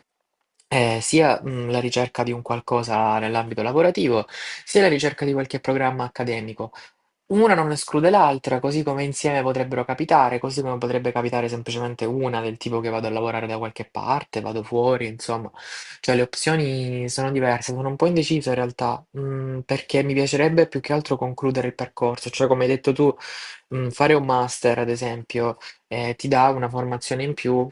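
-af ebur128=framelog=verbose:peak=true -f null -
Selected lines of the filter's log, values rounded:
Integrated loudness:
  I:         -22.2 LUFS
  Threshold: -32.4 LUFS
Loudness range:
  LRA:         4.4 LU
  Threshold: -42.4 LUFS
  LRA low:   -25.1 LUFS
  LRA high:  -20.7 LUFS
True peak:
  Peak:       -2.0 dBFS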